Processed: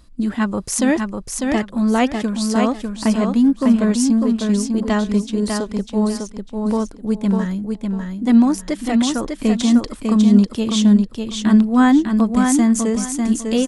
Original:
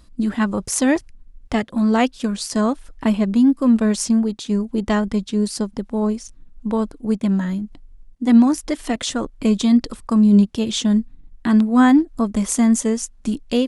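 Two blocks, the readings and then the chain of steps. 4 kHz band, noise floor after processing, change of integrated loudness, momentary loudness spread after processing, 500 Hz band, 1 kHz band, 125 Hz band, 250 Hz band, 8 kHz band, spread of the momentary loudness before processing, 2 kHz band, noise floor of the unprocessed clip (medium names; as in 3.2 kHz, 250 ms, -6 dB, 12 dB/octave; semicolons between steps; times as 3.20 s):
+1.5 dB, -39 dBFS, +1.5 dB, 9 LU, +1.5 dB, +1.5 dB, no reading, +1.5 dB, +1.5 dB, 11 LU, +1.5 dB, -48 dBFS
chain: feedback delay 599 ms, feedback 24%, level -4.5 dB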